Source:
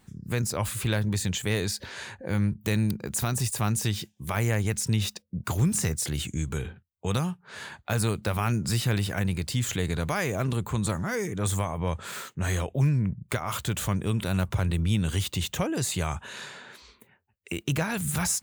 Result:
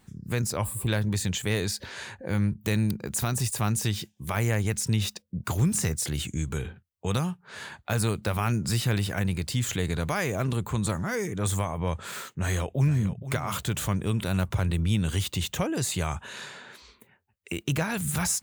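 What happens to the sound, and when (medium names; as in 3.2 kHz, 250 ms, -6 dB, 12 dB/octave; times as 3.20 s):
0.65–0.88 s: time-frequency box 1.2–7.3 kHz -16 dB
12.38–13.30 s: echo throw 470 ms, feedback 25%, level -13 dB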